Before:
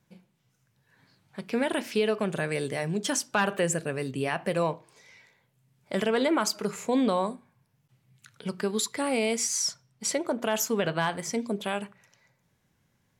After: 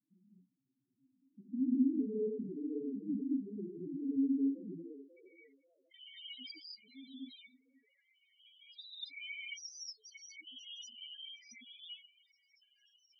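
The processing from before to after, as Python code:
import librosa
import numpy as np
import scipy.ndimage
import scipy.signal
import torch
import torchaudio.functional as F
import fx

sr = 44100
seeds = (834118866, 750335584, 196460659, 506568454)

p1 = fx.rattle_buzz(x, sr, strikes_db=-34.0, level_db=-33.0)
p2 = fx.vowel_filter(p1, sr, vowel='i')
p3 = fx.high_shelf(p2, sr, hz=3400.0, db=11.5)
p4 = fx.filter_sweep_bandpass(p3, sr, from_hz=350.0, to_hz=4300.0, start_s=4.49, end_s=5.65, q=1.6)
p5 = fx.peak_eq(p4, sr, hz=130.0, db=11.0, octaves=0.83)
p6 = p5 + fx.echo_stepped(p5, sr, ms=537, hz=520.0, octaves=0.7, feedback_pct=70, wet_db=-10, dry=0)
p7 = fx.rev_gated(p6, sr, seeds[0], gate_ms=260, shape='rising', drr_db=-6.0)
y = fx.spec_topn(p7, sr, count=4)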